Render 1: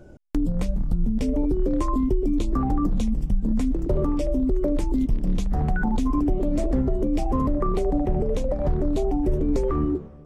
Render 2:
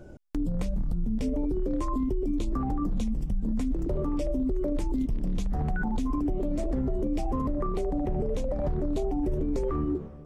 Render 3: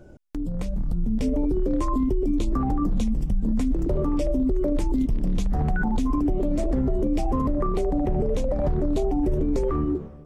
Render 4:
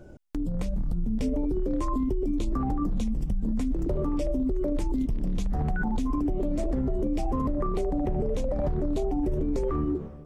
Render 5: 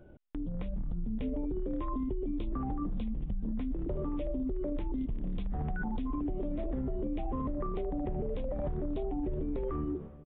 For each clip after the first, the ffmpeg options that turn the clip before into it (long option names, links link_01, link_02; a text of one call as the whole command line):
ffmpeg -i in.wav -af "alimiter=limit=-21dB:level=0:latency=1:release=70" out.wav
ffmpeg -i in.wav -af "dynaudnorm=framelen=330:gausssize=5:maxgain=6dB,volume=-1dB" out.wav
ffmpeg -i in.wav -af "acompressor=threshold=-23dB:ratio=6" out.wav
ffmpeg -i in.wav -af "aresample=8000,aresample=44100,volume=-7dB" out.wav